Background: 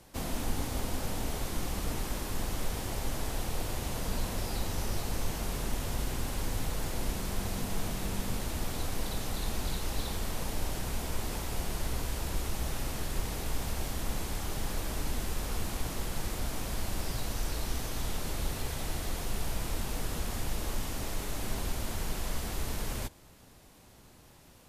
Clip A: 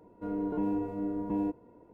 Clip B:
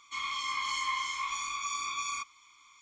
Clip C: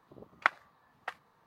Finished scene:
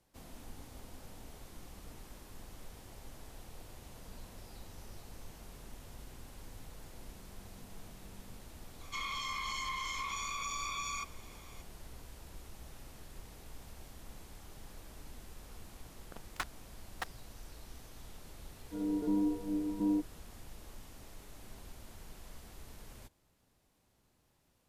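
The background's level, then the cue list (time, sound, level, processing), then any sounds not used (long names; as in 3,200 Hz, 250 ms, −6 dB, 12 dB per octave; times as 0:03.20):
background −17 dB
0:08.81: mix in B + downward compressor, threshold −35 dBFS
0:15.94: mix in C −17 dB + fuzz pedal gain 44 dB, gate −41 dBFS
0:18.50: mix in A −1.5 dB + every bin expanded away from the loudest bin 1.5 to 1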